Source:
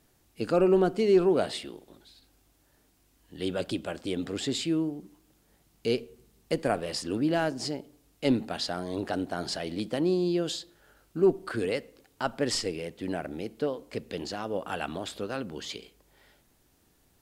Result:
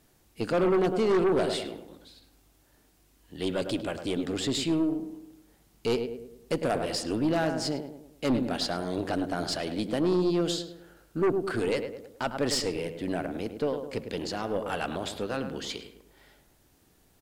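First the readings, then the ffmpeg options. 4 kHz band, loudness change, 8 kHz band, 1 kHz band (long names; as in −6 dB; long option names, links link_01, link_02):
+1.0 dB, +0.5 dB, +1.5 dB, +1.5 dB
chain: -filter_complex "[0:a]asplit=2[link_01][link_02];[link_02]adelay=104,lowpass=frequency=1600:poles=1,volume=-8dB,asplit=2[link_03][link_04];[link_04]adelay=104,lowpass=frequency=1600:poles=1,volume=0.48,asplit=2[link_05][link_06];[link_06]adelay=104,lowpass=frequency=1600:poles=1,volume=0.48,asplit=2[link_07][link_08];[link_08]adelay=104,lowpass=frequency=1600:poles=1,volume=0.48,asplit=2[link_09][link_10];[link_10]adelay=104,lowpass=frequency=1600:poles=1,volume=0.48,asplit=2[link_11][link_12];[link_12]adelay=104,lowpass=frequency=1600:poles=1,volume=0.48[link_13];[link_01][link_03][link_05][link_07][link_09][link_11][link_13]amix=inputs=7:normalize=0,acontrast=24,aeval=exprs='0.447*(cos(1*acos(clip(val(0)/0.447,-1,1)))-cos(1*PI/2))+0.0891*(cos(5*acos(clip(val(0)/0.447,-1,1)))-cos(5*PI/2))+0.0355*(cos(6*acos(clip(val(0)/0.447,-1,1)))-cos(6*PI/2))':channel_layout=same,volume=-9dB"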